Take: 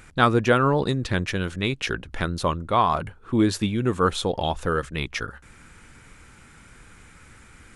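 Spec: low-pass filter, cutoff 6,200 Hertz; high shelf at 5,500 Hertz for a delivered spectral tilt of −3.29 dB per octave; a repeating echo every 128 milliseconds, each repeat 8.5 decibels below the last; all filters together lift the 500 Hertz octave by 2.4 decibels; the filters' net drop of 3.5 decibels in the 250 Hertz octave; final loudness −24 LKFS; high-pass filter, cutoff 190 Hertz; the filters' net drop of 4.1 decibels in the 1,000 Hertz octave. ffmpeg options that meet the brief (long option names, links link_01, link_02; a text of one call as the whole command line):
ffmpeg -i in.wav -af "highpass=190,lowpass=6200,equalizer=frequency=250:width_type=o:gain=-5,equalizer=frequency=500:width_type=o:gain=6,equalizer=frequency=1000:width_type=o:gain=-7,highshelf=frequency=5500:gain=6,aecho=1:1:128|256|384|512:0.376|0.143|0.0543|0.0206,volume=0.5dB" out.wav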